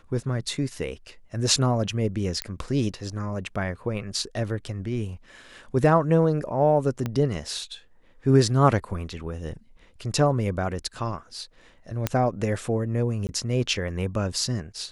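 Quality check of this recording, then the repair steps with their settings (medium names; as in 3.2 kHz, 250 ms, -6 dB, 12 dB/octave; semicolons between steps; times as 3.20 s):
2.42 s: pop -10 dBFS
7.06 s: pop -15 dBFS
12.07 s: pop -8 dBFS
13.27–13.29 s: dropout 19 ms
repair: de-click; interpolate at 13.27 s, 19 ms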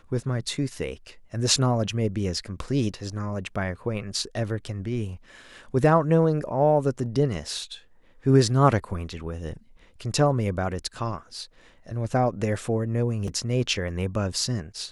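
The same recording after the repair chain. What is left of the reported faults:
7.06 s: pop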